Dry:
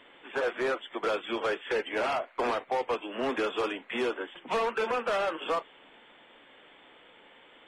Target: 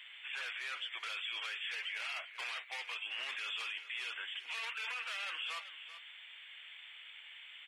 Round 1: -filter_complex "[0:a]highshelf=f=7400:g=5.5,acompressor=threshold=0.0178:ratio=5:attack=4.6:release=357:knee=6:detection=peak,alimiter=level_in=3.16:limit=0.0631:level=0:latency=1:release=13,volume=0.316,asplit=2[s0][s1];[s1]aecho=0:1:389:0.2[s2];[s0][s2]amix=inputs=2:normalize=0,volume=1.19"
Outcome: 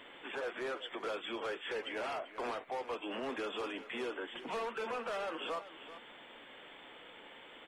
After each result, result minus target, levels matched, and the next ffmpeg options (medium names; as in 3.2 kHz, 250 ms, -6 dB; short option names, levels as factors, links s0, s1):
compression: peak gain reduction +9.5 dB; 2 kHz band -4.5 dB
-filter_complex "[0:a]highshelf=f=7400:g=5.5,alimiter=level_in=3.16:limit=0.0631:level=0:latency=1:release=13,volume=0.316,asplit=2[s0][s1];[s1]aecho=0:1:389:0.2[s2];[s0][s2]amix=inputs=2:normalize=0,volume=1.19"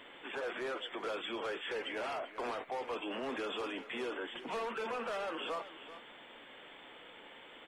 2 kHz band -4.5 dB
-filter_complex "[0:a]highpass=f=2400:t=q:w=1.9,highshelf=f=7400:g=5.5,alimiter=level_in=3.16:limit=0.0631:level=0:latency=1:release=13,volume=0.316,asplit=2[s0][s1];[s1]aecho=0:1:389:0.2[s2];[s0][s2]amix=inputs=2:normalize=0,volume=1.19"